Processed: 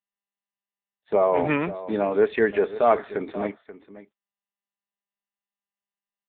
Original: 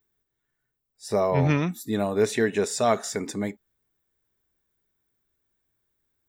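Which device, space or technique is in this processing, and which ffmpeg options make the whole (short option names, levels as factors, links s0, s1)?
satellite phone: -af "agate=range=0.0141:threshold=0.0112:ratio=16:detection=peak,highpass=310,lowpass=3400,aecho=1:1:533:0.188,volume=1.68" -ar 8000 -c:a libopencore_amrnb -b:a 6700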